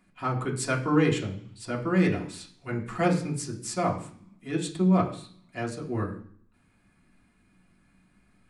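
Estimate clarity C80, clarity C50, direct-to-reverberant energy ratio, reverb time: 13.5 dB, 10.5 dB, −3.0 dB, 0.55 s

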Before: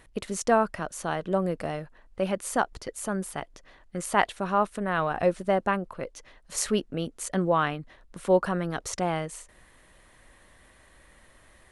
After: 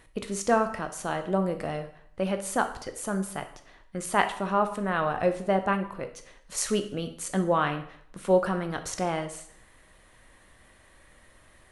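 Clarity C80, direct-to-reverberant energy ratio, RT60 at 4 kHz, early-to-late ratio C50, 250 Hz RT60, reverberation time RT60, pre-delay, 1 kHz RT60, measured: 14.5 dB, 7.0 dB, 0.60 s, 11.0 dB, 0.65 s, 0.65 s, 5 ms, 0.60 s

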